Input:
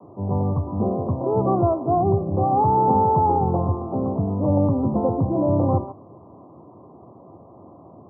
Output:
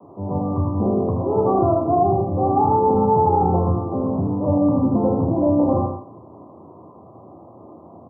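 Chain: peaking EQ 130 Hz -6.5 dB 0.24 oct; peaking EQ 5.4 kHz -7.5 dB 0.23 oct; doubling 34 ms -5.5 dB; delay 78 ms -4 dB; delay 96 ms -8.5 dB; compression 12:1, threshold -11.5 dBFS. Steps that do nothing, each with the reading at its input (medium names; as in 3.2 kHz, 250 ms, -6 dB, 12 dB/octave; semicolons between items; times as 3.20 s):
peaking EQ 5.4 kHz: input has nothing above 1.2 kHz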